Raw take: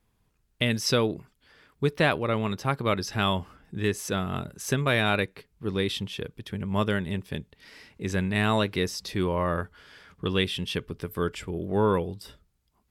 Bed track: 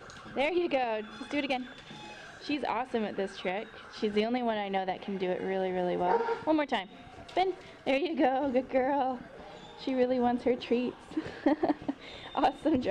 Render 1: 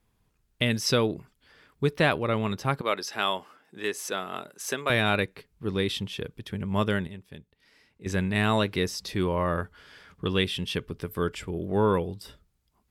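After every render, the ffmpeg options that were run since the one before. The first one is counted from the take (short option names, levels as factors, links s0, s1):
-filter_complex "[0:a]asettb=1/sr,asplit=3[s0][s1][s2];[s0]atrim=end=2.814[s3];[s1]atrim=start=2.81:end=4.9,asetpts=PTS-STARTPTS,afade=t=in:d=0.004:c=qsin,afade=t=out:st=2.086:d=0.004:c=qsin,highpass=410[s4];[s2]atrim=start=4.896[s5];[s3][s4]acrossfade=d=0.004:c1=hsin:c2=qsin[s6];[s6][s5]acrossfade=d=0.004:c1=qsin:c2=hsin,asplit=3[s7][s8][s9];[s7]atrim=end=7.072[s10];[s8]atrim=start=7.068:end=8.062,asetpts=PTS-STARTPTS,volume=0.266[s11];[s9]atrim=start=8.058[s12];[s10][s11]acrossfade=d=0.004:c1=hsin:c2=hsin[s13];[s13][s12]acrossfade=d=0.004:c1=hsin:c2=hsin"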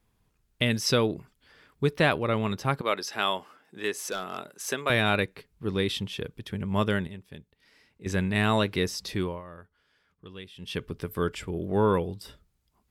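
-filter_complex "[0:a]asettb=1/sr,asplit=3[s0][s1][s2];[s0]atrim=end=3.964[s3];[s1]atrim=start=3.96:end=4.38,asetpts=PTS-STARTPTS,afade=t=in:d=0.004:c=qsin,afade=t=out:st=0.416:d=0.004:c=qsin,asoftclip=type=hard:threshold=0.0562[s4];[s2]atrim=start=4.376[s5];[s3][s4]acrossfade=d=0.004:c1=hsin:c2=qsin[s6];[s6][s5]acrossfade=d=0.004:c1=qsin:c2=hsin,asplit=3[s7][s8][s9];[s7]atrim=end=9.42,asetpts=PTS-STARTPTS,afade=t=out:st=9.14:d=0.28:silence=0.125893[s10];[s8]atrim=start=9.42:end=10.56,asetpts=PTS-STARTPTS,volume=0.126[s11];[s9]atrim=start=10.56,asetpts=PTS-STARTPTS,afade=t=in:d=0.28:silence=0.125893[s12];[s10][s11][s12]concat=n=3:v=0:a=1"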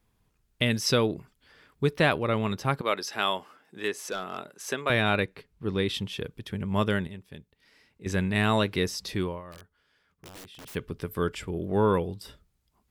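-filter_complex "[0:a]asettb=1/sr,asplit=3[s0][s1][s2];[s0]atrim=end=3.884[s3];[s1]atrim=start=3.88:end=5.94,asetpts=PTS-STARTPTS,afade=t=in:d=0.004:c=qsin,afade=t=out:st=2.056:d=0.004:c=qsin,highshelf=f=5800:g=-6[s4];[s2]atrim=start=5.936[s5];[s3][s4]acrossfade=d=0.004:c1=hsin:c2=qsin[s6];[s6][s5]acrossfade=d=0.004:c1=qsin:c2=hsin,asplit=3[s7][s8][s9];[s7]afade=t=out:st=9.51:d=0.02[s10];[s8]aeval=exprs='(mod(100*val(0)+1,2)-1)/100':c=same,afade=t=in:st=9.51:d=0.02,afade=t=out:st=10.74:d=0.02[s11];[s9]afade=t=in:st=10.74:d=0.02[s12];[s10][s11][s12]amix=inputs=3:normalize=0"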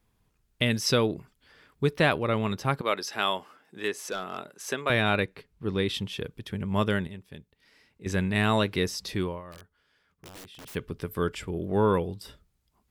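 -af anull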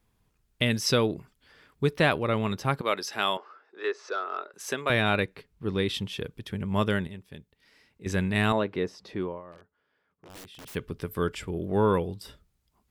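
-filter_complex "[0:a]asettb=1/sr,asplit=3[s0][s1][s2];[s0]atrim=end=3.374[s3];[s1]atrim=start=3.37:end=4.54,asetpts=PTS-STARTPTS,afade=t=in:d=0.004:c=qsin,afade=t=out:st=1.166:d=0.004:c=qsin,highpass=f=380:w=0.5412,highpass=f=380:w=1.3066,equalizer=f=390:t=q:w=4:g=5,equalizer=f=750:t=q:w=4:g=-3,equalizer=f=1300:t=q:w=4:g=7,equalizer=f=2200:t=q:w=4:g=-4,equalizer=f=3100:t=q:w=4:g=-9,lowpass=f=4700:w=0.5412,lowpass=f=4700:w=1.3066[s4];[s2]atrim=start=4.536[s5];[s3][s4]acrossfade=d=0.004:c1=hsin:c2=qsin[s6];[s6][s5]acrossfade=d=0.004:c1=qsin:c2=hsin,asettb=1/sr,asplit=3[s7][s8][s9];[s7]atrim=end=8.524[s10];[s8]atrim=start=8.52:end=10.3,asetpts=PTS-STARTPTS,afade=t=in:d=0.004:c=qsin,afade=t=out:st=1.776:d=0.004:c=qsin,bandpass=f=520:t=q:w=0.51[s11];[s9]atrim=start=10.296[s12];[s10][s11]acrossfade=d=0.004:c1=hsin:c2=qsin[s13];[s13][s12]acrossfade=d=0.004:c1=qsin:c2=hsin"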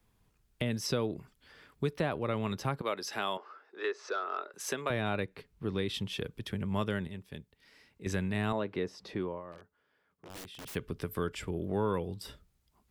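-filter_complex "[0:a]acrossover=split=170|1200[s0][s1][s2];[s2]alimiter=limit=0.0794:level=0:latency=1:release=250[s3];[s0][s1][s3]amix=inputs=3:normalize=0,acompressor=threshold=0.0224:ratio=2"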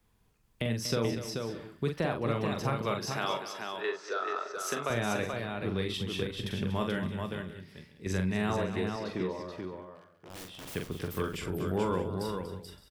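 -filter_complex "[0:a]asplit=2[s0][s1];[s1]adelay=43,volume=0.282[s2];[s0][s2]amix=inputs=2:normalize=0,aecho=1:1:43|239|433|567|622:0.266|0.266|0.562|0.126|0.119"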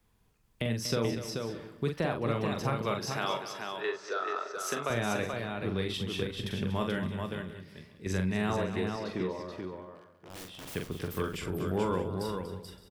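-filter_complex "[0:a]asplit=2[s0][s1];[s1]adelay=351,lowpass=f=2000:p=1,volume=0.0668,asplit=2[s2][s3];[s3]adelay=351,lowpass=f=2000:p=1,volume=0.48,asplit=2[s4][s5];[s5]adelay=351,lowpass=f=2000:p=1,volume=0.48[s6];[s0][s2][s4][s6]amix=inputs=4:normalize=0"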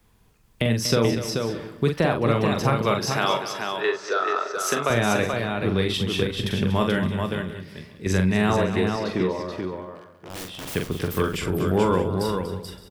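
-af "volume=2.99"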